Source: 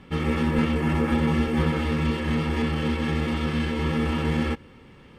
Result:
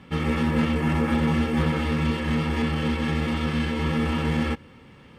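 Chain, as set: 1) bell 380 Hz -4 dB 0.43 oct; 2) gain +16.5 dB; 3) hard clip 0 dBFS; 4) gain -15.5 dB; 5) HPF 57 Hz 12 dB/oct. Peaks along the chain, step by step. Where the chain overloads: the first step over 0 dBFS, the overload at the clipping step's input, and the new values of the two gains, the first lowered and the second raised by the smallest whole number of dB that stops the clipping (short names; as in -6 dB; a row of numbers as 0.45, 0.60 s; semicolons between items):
-11.5, +5.0, 0.0, -15.5, -12.0 dBFS; step 2, 5.0 dB; step 2 +11.5 dB, step 4 -10.5 dB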